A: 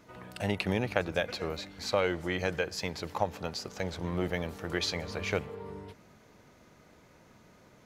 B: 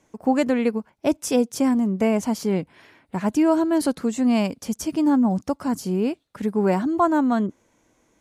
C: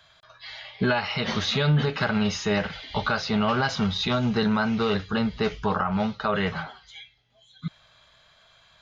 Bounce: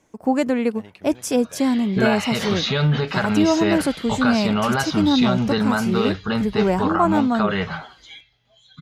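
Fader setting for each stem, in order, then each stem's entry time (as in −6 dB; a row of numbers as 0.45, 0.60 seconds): −14.0, +0.5, +2.5 decibels; 0.35, 0.00, 1.15 seconds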